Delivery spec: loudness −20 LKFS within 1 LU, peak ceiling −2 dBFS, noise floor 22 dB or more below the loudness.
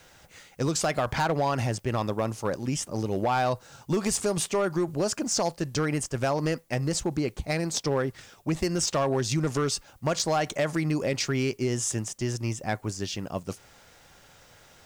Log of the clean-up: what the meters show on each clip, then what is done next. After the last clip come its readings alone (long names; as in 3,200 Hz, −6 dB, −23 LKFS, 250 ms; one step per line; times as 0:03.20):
share of clipped samples 1.1%; peaks flattened at −19.0 dBFS; integrated loudness −28.0 LKFS; sample peak −19.0 dBFS; target loudness −20.0 LKFS
→ clipped peaks rebuilt −19 dBFS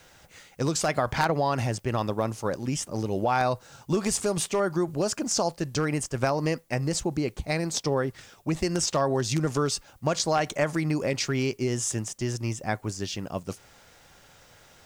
share of clipped samples 0.0%; integrated loudness −27.5 LKFS; sample peak −10.0 dBFS; target loudness −20.0 LKFS
→ level +7.5 dB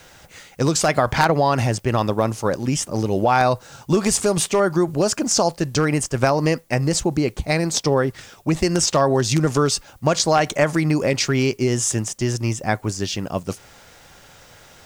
integrated loudness −20.0 LKFS; sample peak −2.5 dBFS; background noise floor −48 dBFS